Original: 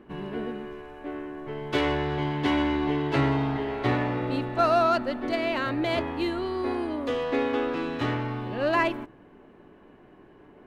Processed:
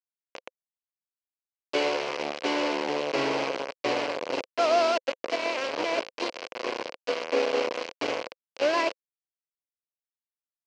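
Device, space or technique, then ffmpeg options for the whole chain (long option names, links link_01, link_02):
hand-held game console: -af "acrusher=bits=3:mix=0:aa=0.000001,highpass=450,equalizer=frequency=520:width_type=q:width=4:gain=8,equalizer=frequency=830:width_type=q:width=4:gain=-5,equalizer=frequency=1300:width_type=q:width=4:gain=-8,equalizer=frequency=1800:width_type=q:width=4:gain=-8,equalizer=frequency=3600:width_type=q:width=4:gain=-9,lowpass=frequency=4700:width=0.5412,lowpass=frequency=4700:width=1.3066,volume=1dB"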